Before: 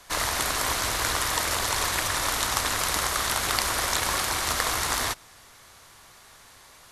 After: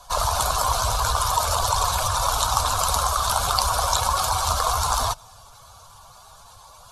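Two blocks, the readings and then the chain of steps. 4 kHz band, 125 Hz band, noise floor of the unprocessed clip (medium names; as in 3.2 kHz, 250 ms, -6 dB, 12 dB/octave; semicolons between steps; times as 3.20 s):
+1.0 dB, +8.5 dB, -52 dBFS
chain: spectral contrast enhancement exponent 1.8; static phaser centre 800 Hz, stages 4; trim +7 dB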